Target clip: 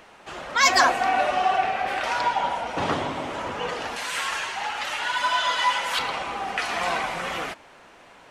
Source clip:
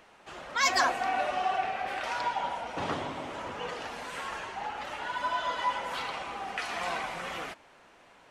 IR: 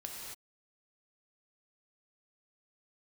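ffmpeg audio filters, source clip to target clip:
-filter_complex "[0:a]asettb=1/sr,asplit=3[a][b][c];[a]atrim=end=3.964[d];[b]atrim=start=3.96:end=5.99,asetpts=PTS-STARTPTS,afade=t=in:d=0.004:c=qsin,afade=t=out:st=2.026:d=0.004:c=qsin,tiltshelf=f=1.1k:g=-8[e];[c]atrim=start=5.986[f];[d][e]acrossfade=d=0.004:c1=hsin:c2=qsin[g];[g][f]acrossfade=d=0.004:c1=qsin:c2=hsin,volume=7.5dB"

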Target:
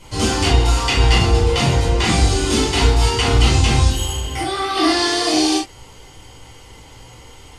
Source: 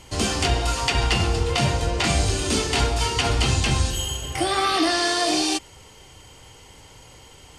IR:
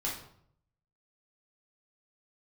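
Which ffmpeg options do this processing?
-filter_complex "[0:a]asplit=3[a][b][c];[a]afade=t=out:st=4.31:d=0.02[d];[b]acompressor=threshold=-25dB:ratio=5,afade=t=in:st=4.31:d=0.02,afade=t=out:st=4.75:d=0.02[e];[c]afade=t=in:st=4.75:d=0.02[f];[d][e][f]amix=inputs=3:normalize=0[g];[1:a]atrim=start_sample=2205,atrim=end_sample=3528[h];[g][h]afir=irnorm=-1:irlink=0,volume=1dB"

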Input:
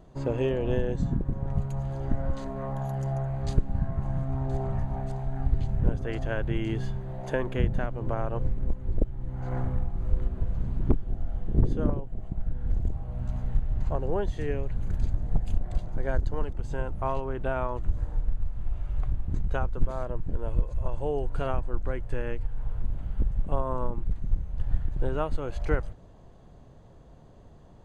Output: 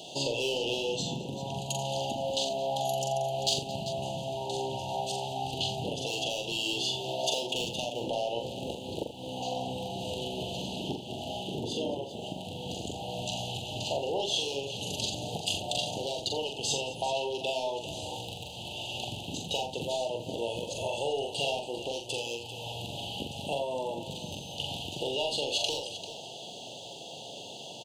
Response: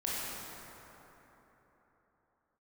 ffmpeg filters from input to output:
-filter_complex "[0:a]highpass=f=100:w=0.5412,highpass=f=100:w=1.3066,highshelf=f=1.5k:t=q:w=3:g=8.5,asplit=2[a][b];[b]highpass=f=720:p=1,volume=24dB,asoftclip=type=tanh:threshold=-8.5dB[c];[a][c]amix=inputs=2:normalize=0,lowpass=f=2.3k:p=1,volume=-6dB,acompressor=threshold=-28dB:ratio=6,asuperstop=centerf=1600:order=20:qfactor=0.86,tiltshelf=f=720:g=-8,asplit=2[d][e];[e]aecho=0:1:43|85|220|393:0.596|0.266|0.119|0.237[f];[d][f]amix=inputs=2:normalize=0"

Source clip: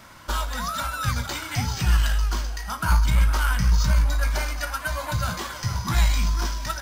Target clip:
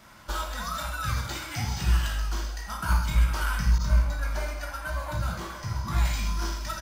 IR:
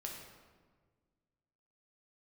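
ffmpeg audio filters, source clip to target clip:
-filter_complex "[0:a]aecho=1:1:134:0.224[a];[1:a]atrim=start_sample=2205,atrim=end_sample=4410[b];[a][b]afir=irnorm=-1:irlink=0,asettb=1/sr,asplit=3[c][d][e];[c]atrim=end=3.784[f];[d]atrim=start=3.78:end=6.05,asetpts=PTS-STARTPTS,afade=t=in:d=0.004:c=qsin,afade=t=out:st=2.266:d=0.004:c=qsin,adynamicequalizer=threshold=0.00631:dfrequency=1800:dqfactor=0.7:tfrequency=1800:tqfactor=0.7:attack=5:release=100:ratio=0.375:range=2.5:mode=cutabove:tftype=highshelf[g];[e]atrim=start=6.046[h];[f][g]acrossfade=d=0.004:c1=hsin:c2=qsin[i];[i][h]acrossfade=d=0.004:c1=qsin:c2=hsin,volume=-1.5dB"

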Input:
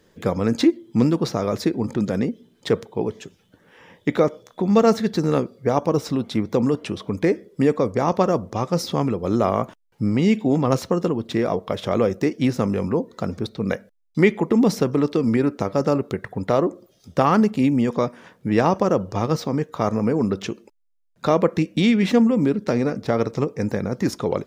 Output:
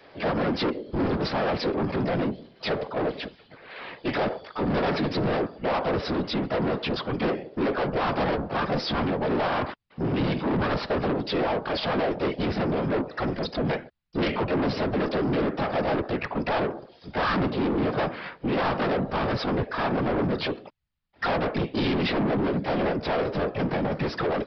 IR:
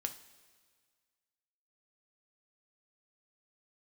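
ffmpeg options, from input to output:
-filter_complex "[0:a]adynamicequalizer=threshold=0.0158:dfrequency=150:dqfactor=1.7:tfrequency=150:tqfactor=1.7:attack=5:release=100:ratio=0.375:range=4:mode=boostabove:tftype=bell,asplit=2[a][b];[b]highpass=f=720:p=1,volume=28dB,asoftclip=type=tanh:threshold=-1.5dB[c];[a][c]amix=inputs=2:normalize=0,lowpass=f=2.5k:p=1,volume=-6dB,asplit=2[d][e];[e]volume=20dB,asoftclip=hard,volume=-20dB,volume=-12dB[f];[d][f]amix=inputs=2:normalize=0,afftfilt=real='hypot(re,im)*cos(2*PI*random(0))':imag='hypot(re,im)*sin(2*PI*random(1))':win_size=512:overlap=0.75,asplit=2[g][h];[h]asetrate=58866,aresample=44100,atempo=0.749154,volume=-2dB[i];[g][i]amix=inputs=2:normalize=0,aresample=11025,asoftclip=type=tanh:threshold=-13.5dB,aresample=44100,volume=-7dB"

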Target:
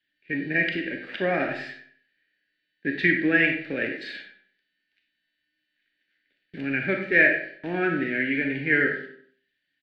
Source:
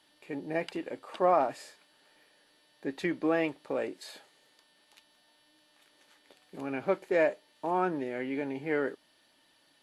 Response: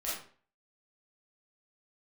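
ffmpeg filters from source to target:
-filter_complex "[0:a]bandreject=f=6.7k:w=8.7,agate=range=-23dB:threshold=-52dB:ratio=16:detection=peak,firequalizer=gain_entry='entry(200,0);entry(1100,-19);entry(1600,15);entry(8800,-23)':delay=0.05:min_phase=1,acrossover=split=390[a][b];[a]acontrast=76[c];[c][b]amix=inputs=2:normalize=0,asplit=2[d][e];[e]adelay=96,lowpass=f=3.3k:p=1,volume=-12.5dB,asplit=2[f][g];[g]adelay=96,lowpass=f=3.3k:p=1,volume=0.35,asplit=2[h][i];[i]adelay=96,lowpass=f=3.3k:p=1,volume=0.35,asplit=2[j][k];[k]adelay=96,lowpass=f=3.3k:p=1,volume=0.35[l];[d][f][h][j][l]amix=inputs=5:normalize=0,asplit=2[m][n];[1:a]atrim=start_sample=2205[o];[n][o]afir=irnorm=-1:irlink=0,volume=-4dB[p];[m][p]amix=inputs=2:normalize=0"

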